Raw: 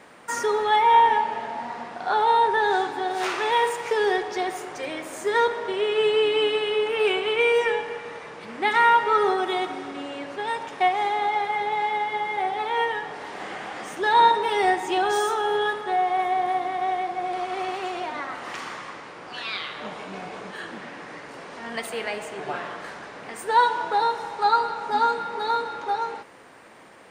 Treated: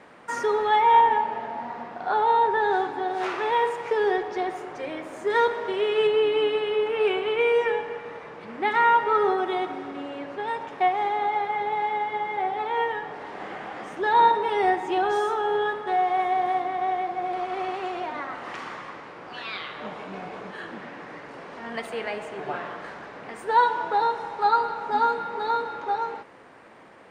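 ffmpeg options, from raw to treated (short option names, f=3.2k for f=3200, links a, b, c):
-af "asetnsamples=n=441:p=0,asendcmd='1.01 lowpass f 1600;5.3 lowpass f 3700;6.07 lowpass f 1700;15.87 lowpass f 3700;16.62 lowpass f 2300',lowpass=f=2.6k:p=1"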